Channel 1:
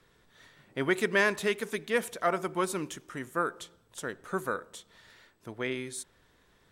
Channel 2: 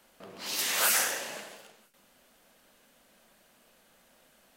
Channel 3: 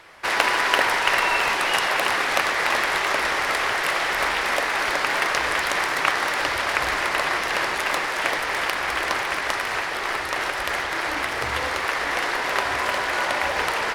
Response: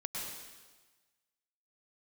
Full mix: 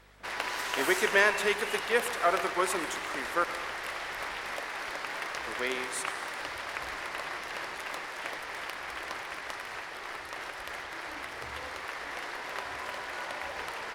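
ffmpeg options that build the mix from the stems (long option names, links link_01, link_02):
-filter_complex "[0:a]highpass=390,volume=0.5dB,asplit=3[link_01][link_02][link_03];[link_01]atrim=end=3.44,asetpts=PTS-STARTPTS,afade=type=out:start_time=3.436:duration=0.004:curve=hsin[link_04];[link_02]atrim=start=3.44:end=5.28,asetpts=PTS-STARTPTS,volume=0[link_05];[link_03]atrim=start=5.28,asetpts=PTS-STARTPTS,afade=type=in:duration=0.004:curve=hsin[link_06];[link_04][link_05][link_06]concat=n=3:v=0:a=1,asplit=2[link_07][link_08];[link_08]volume=-10.5dB[link_09];[1:a]highshelf=frequency=11000:gain=-10.5,aeval=exprs='val(0)+0.00282*(sin(2*PI*50*n/s)+sin(2*PI*2*50*n/s)/2+sin(2*PI*3*50*n/s)/3+sin(2*PI*4*50*n/s)/4+sin(2*PI*5*50*n/s)/5)':channel_layout=same,volume=-9.5dB[link_10];[2:a]volume=-14dB[link_11];[3:a]atrim=start_sample=2205[link_12];[link_09][link_12]afir=irnorm=-1:irlink=0[link_13];[link_07][link_10][link_11][link_13]amix=inputs=4:normalize=0"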